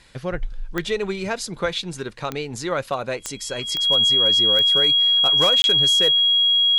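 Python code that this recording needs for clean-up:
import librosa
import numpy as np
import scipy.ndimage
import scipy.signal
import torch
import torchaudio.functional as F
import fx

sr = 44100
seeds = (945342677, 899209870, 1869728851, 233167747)

y = fx.fix_declip(x, sr, threshold_db=-11.0)
y = fx.fix_declick_ar(y, sr, threshold=10.0)
y = fx.notch(y, sr, hz=3300.0, q=30.0)
y = fx.fix_interpolate(y, sr, at_s=(5.62,), length_ms=21.0)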